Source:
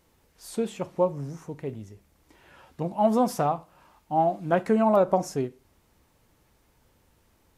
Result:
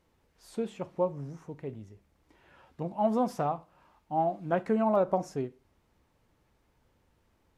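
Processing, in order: treble shelf 5.9 kHz -11 dB; trim -5 dB

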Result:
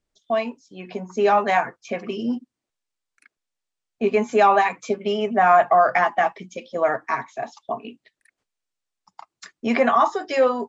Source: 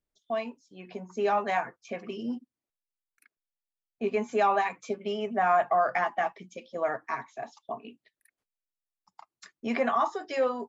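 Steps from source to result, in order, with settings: steep low-pass 8.9 kHz; trim +8.5 dB

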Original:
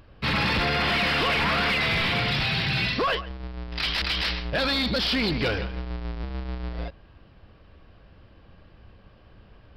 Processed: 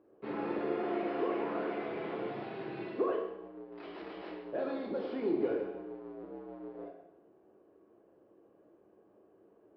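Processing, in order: ladder band-pass 410 Hz, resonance 60%; reverberation RT60 0.90 s, pre-delay 8 ms, DRR -0.5 dB; trim +2 dB

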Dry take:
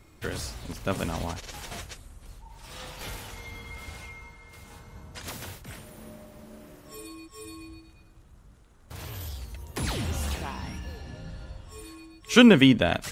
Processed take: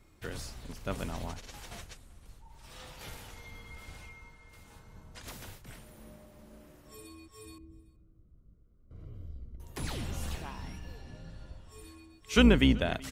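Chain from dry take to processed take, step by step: octave divider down 2 oct, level -2 dB; 7.58–9.60 s: boxcar filter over 51 samples; delay 381 ms -24 dB; trim -7.5 dB

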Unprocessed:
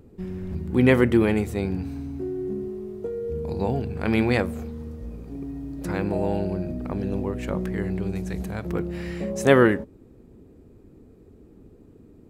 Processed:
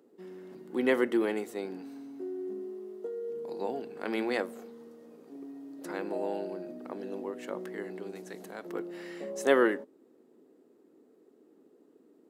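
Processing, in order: high-pass 280 Hz 24 dB/octave; band-stop 2.4 kHz, Q 9.5; trim -6.5 dB

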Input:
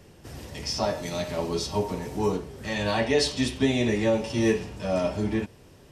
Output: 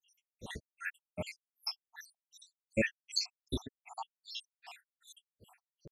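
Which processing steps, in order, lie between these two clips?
random holes in the spectrogram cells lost 81%; granulator 229 ms, grains 2.6 per s, spray 107 ms, pitch spread up and down by 0 st; trim +4.5 dB

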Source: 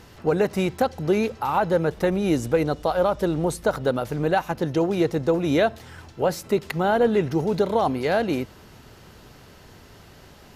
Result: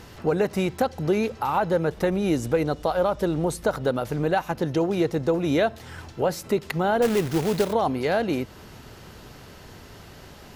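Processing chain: in parallel at +2 dB: compression, threshold -30 dBFS, peak gain reduction 14 dB; 7.02–7.73 s: on the sum: companded quantiser 4-bit; trim -4 dB

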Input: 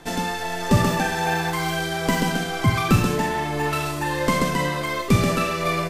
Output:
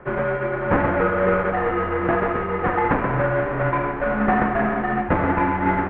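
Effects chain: square wave that keeps the level; mistuned SSB -310 Hz 440–2200 Hz; trim +2 dB

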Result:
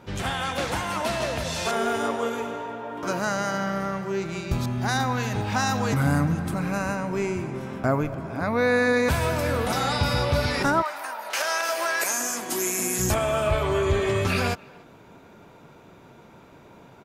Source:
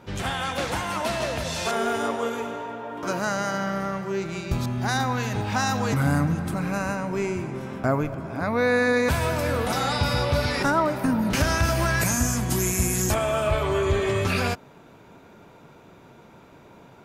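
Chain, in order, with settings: 10.81–12.98 s: high-pass 840 Hz -> 210 Hz 24 dB/octave; speakerphone echo 290 ms, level -24 dB

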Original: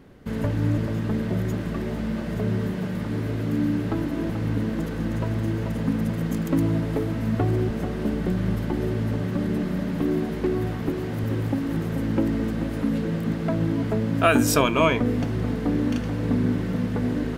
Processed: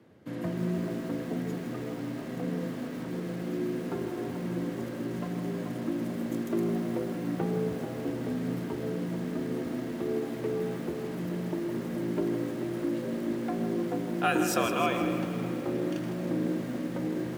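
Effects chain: frequency shift +67 Hz; spring tank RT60 3.4 s, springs 32/55 ms, chirp 65 ms, DRR 8.5 dB; bit-crushed delay 159 ms, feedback 55%, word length 6-bit, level -9 dB; trim -8.5 dB

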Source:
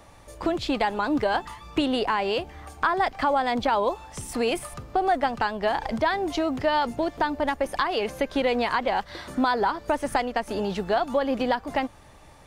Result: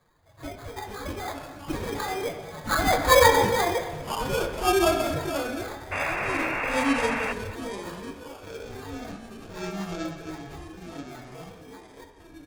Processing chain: phase randomisation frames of 50 ms; Doppler pass-by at 3.12 s, 15 m/s, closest 2.3 m; dynamic bell 1.9 kHz, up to -6 dB, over -47 dBFS, Q 0.99; in parallel at -1 dB: gain riding within 4 dB 0.5 s; on the sum: formant-preserving pitch shift +10.5 st; sample-rate reducer 2.8 kHz, jitter 0%; ever faster or slower copies 268 ms, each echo -6 st, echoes 3, each echo -6 dB; on a send at -3.5 dB: reverberation RT60 1.2 s, pre-delay 5 ms; on the sum: painted sound noise, 5.91–7.33 s, 450–2800 Hz -33 dBFS; delay 231 ms -16 dB; trim +3.5 dB

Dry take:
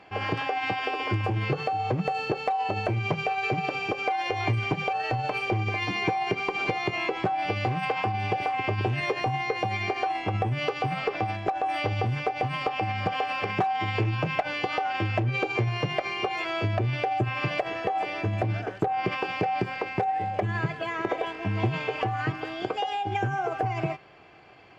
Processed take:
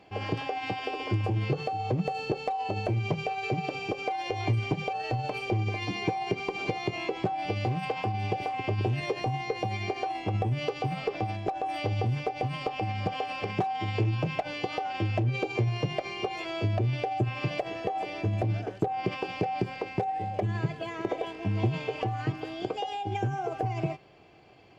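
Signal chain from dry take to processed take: peaking EQ 1.5 kHz -10 dB 1.7 oct

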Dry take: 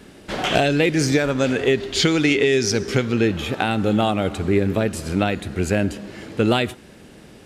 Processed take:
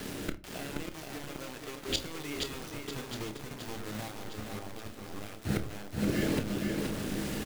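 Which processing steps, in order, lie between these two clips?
2.60–4.08 s: square wave that keeps the level; in parallel at +1 dB: compression 12:1, threshold -29 dBFS, peak gain reduction 18.5 dB; on the sum: rotary cabinet horn 1.2 Hz; inverted gate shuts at -17 dBFS, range -27 dB; bit crusher 7-bit; doubling 28 ms -12 dB; on a send: echo whose repeats swap between lows and highs 593 ms, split 1.4 kHz, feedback 64%, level -9 dB; on the sum: simulated room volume 240 m³, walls furnished, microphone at 0.49 m; bit-crushed delay 475 ms, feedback 35%, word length 9-bit, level -4 dB

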